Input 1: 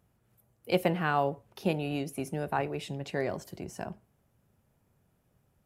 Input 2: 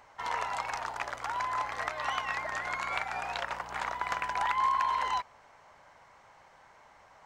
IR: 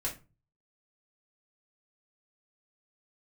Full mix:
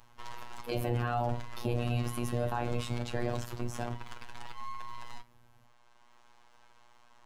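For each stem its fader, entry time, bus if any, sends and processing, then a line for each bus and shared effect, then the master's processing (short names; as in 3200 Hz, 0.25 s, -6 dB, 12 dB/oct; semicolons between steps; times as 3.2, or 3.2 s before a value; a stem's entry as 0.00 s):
+0.5 dB, 0.00 s, send -6 dB, octaver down 1 oct, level +1 dB
+3.0 dB, 0.00 s, send -16.5 dB, HPF 890 Hz 12 dB/oct; compressor, threshold -33 dBFS, peak gain reduction 7.5 dB; half-wave rectifier; auto duck -7 dB, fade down 0.35 s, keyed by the first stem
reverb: on, RT60 0.30 s, pre-delay 3 ms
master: bell 2000 Hz -6 dB 0.54 oct; robotiser 120 Hz; limiter -18 dBFS, peak gain reduction 11 dB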